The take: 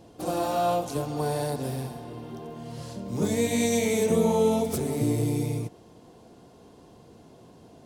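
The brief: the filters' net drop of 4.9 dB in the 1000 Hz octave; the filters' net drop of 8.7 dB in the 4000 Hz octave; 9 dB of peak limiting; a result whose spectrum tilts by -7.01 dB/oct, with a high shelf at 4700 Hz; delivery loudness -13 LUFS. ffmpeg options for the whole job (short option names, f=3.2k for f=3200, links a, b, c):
-af "equalizer=f=1k:t=o:g=-7.5,equalizer=f=4k:t=o:g=-7,highshelf=f=4.7k:g=-6.5,volume=18dB,alimiter=limit=-3dB:level=0:latency=1"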